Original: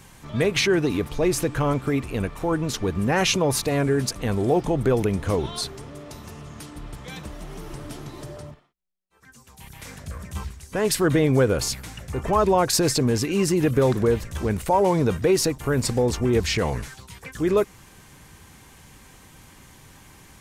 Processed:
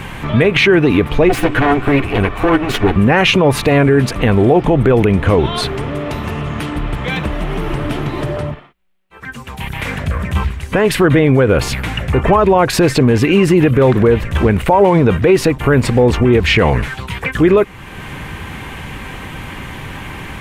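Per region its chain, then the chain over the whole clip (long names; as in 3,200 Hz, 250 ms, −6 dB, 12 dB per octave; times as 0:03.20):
0:01.29–0:02.96: lower of the sound and its delayed copy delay 9.8 ms + comb filter 2.7 ms, depth 31%
whole clip: high shelf with overshoot 3,900 Hz −12 dB, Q 1.5; downward compressor 1.5 to 1, threshold −45 dBFS; boost into a limiter +22.5 dB; level −1 dB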